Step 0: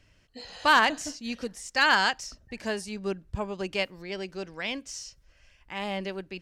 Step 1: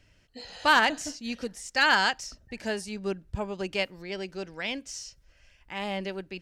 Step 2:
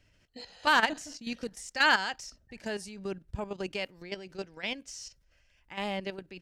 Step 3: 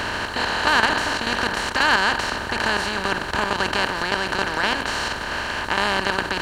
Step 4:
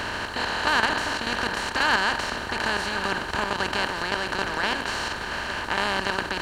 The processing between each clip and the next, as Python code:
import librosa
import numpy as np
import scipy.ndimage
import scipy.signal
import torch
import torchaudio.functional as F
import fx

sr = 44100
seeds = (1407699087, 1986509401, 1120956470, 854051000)

y1 = fx.notch(x, sr, hz=1100.0, q=11.0)
y2 = fx.level_steps(y1, sr, step_db=11)
y3 = fx.bin_compress(y2, sr, power=0.2)
y3 = F.gain(torch.from_numpy(y3), 1.0).numpy()
y4 = y3 + 10.0 ** (-12.5 / 20.0) * np.pad(y3, (int(1105 * sr / 1000.0), 0))[:len(y3)]
y4 = F.gain(torch.from_numpy(y4), -4.0).numpy()